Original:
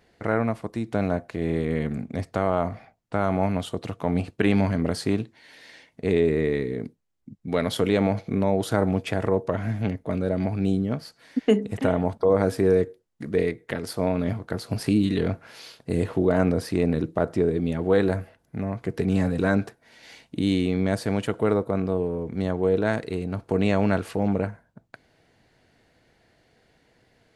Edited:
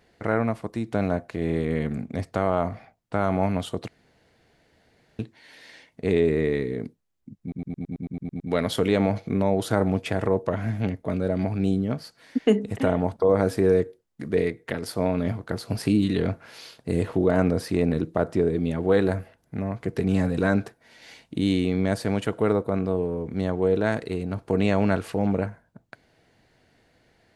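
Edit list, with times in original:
3.88–5.19 s: room tone
7.41 s: stutter 0.11 s, 10 plays

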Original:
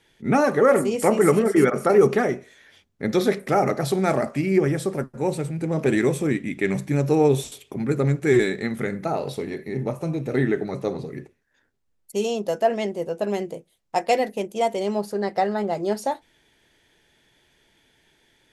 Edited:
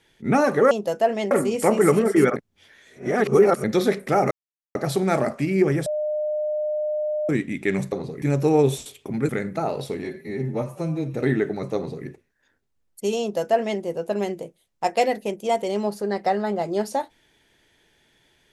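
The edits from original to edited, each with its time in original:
1.76–3.04 s: reverse
3.71 s: insert silence 0.44 s
4.82–6.25 s: bleep 606 Hz -22 dBFS
7.95–8.77 s: delete
9.52–10.25 s: stretch 1.5×
10.87–11.17 s: copy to 6.88 s
12.32–12.92 s: copy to 0.71 s

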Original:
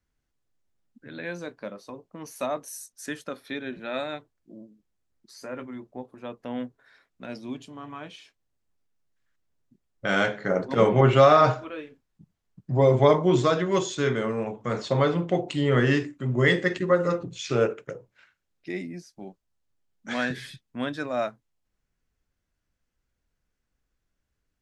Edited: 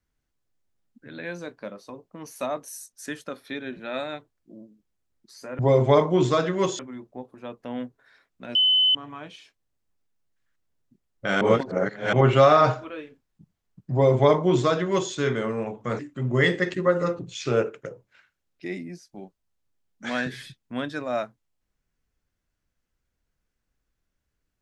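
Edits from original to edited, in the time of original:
7.35–7.75 s: bleep 3.03 kHz -16 dBFS
10.21–10.93 s: reverse
12.72–13.92 s: copy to 5.59 s
14.79–16.03 s: delete

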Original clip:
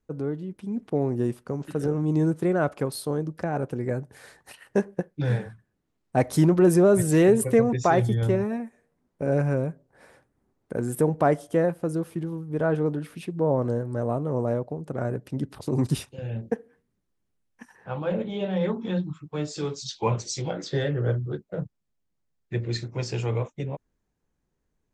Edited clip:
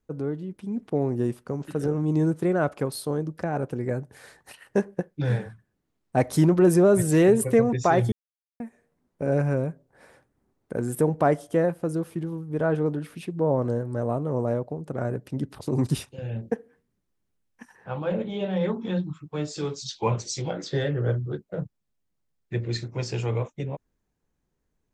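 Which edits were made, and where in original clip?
8.12–8.60 s: mute

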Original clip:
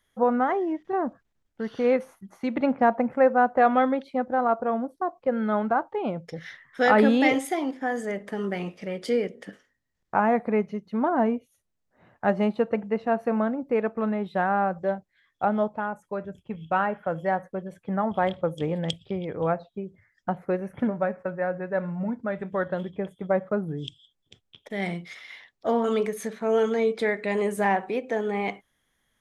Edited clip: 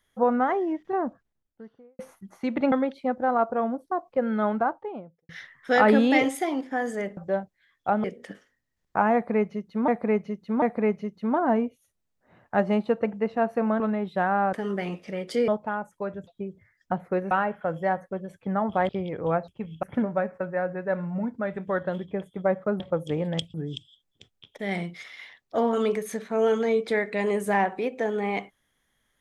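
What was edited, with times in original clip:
0.84–1.99 s: studio fade out
2.72–3.82 s: delete
5.60–6.39 s: studio fade out
8.27–9.22 s: swap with 14.72–15.59 s
10.32–11.06 s: loop, 3 plays
13.50–13.99 s: delete
16.38–16.73 s: swap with 19.64–20.68 s
18.31–19.05 s: move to 23.65 s

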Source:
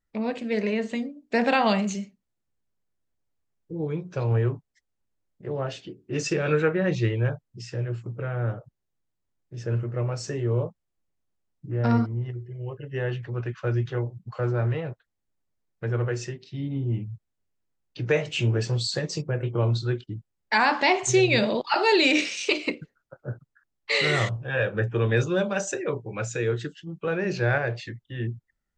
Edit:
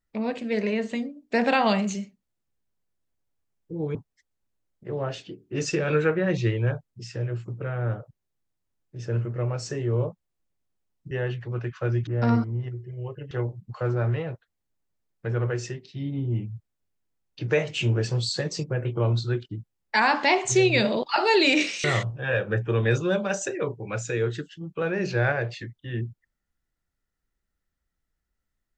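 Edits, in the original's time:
3.95–4.53 s: delete
12.93–13.89 s: move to 11.69 s
22.42–24.10 s: delete

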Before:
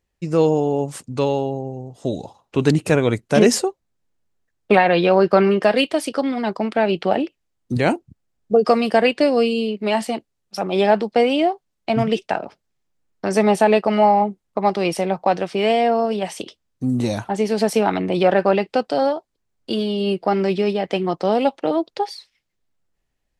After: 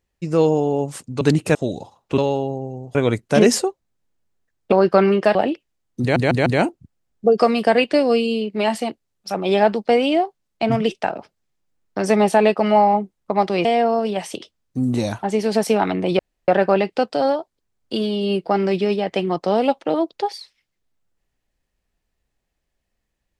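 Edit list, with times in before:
1.21–1.98 s: swap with 2.61–2.95 s
4.72–5.11 s: delete
5.74–7.07 s: delete
7.73 s: stutter 0.15 s, 4 plays
14.92–15.71 s: delete
18.25 s: insert room tone 0.29 s

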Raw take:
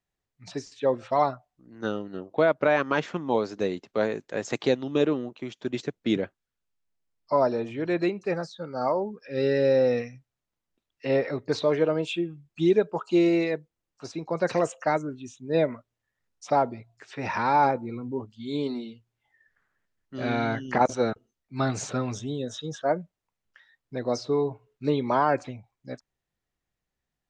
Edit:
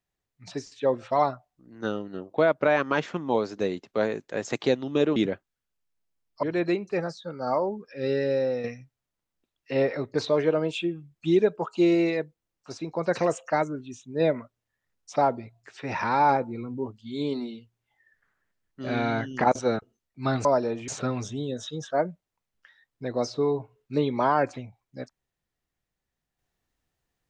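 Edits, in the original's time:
5.16–6.07 s: delete
7.34–7.77 s: move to 21.79 s
9.20–9.98 s: fade out, to -7.5 dB

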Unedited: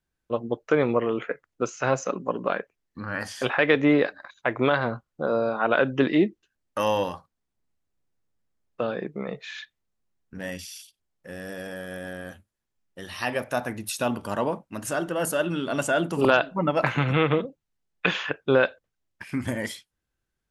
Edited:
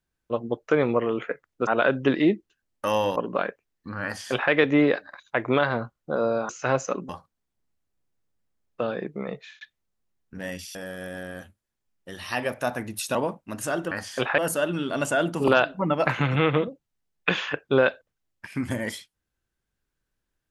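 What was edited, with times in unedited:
1.67–2.27 s: swap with 5.60–7.09 s
3.15–3.62 s: copy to 15.15 s
9.33–9.61 s: fade out
10.75–11.65 s: delete
14.05–14.39 s: delete

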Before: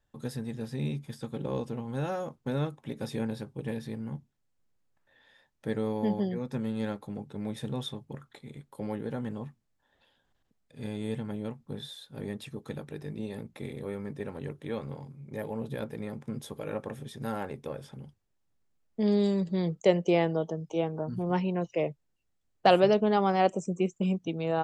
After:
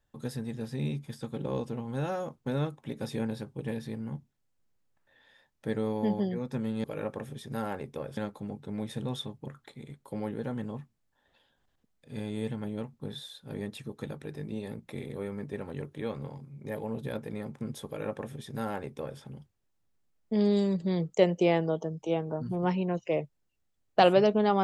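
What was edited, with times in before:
16.54–17.87 s: copy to 6.84 s

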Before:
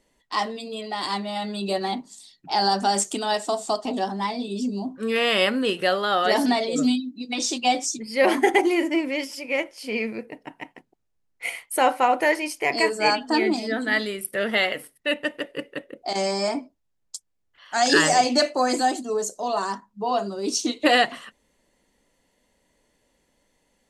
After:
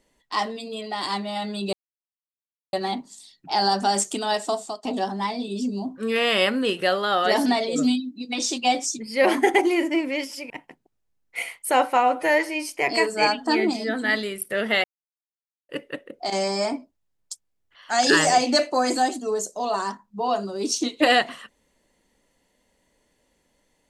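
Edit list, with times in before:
1.73 s: insert silence 1.00 s
3.53–3.83 s: fade out, to -24 dB
9.50–10.57 s: delete
12.04–12.52 s: stretch 1.5×
14.67–15.52 s: mute

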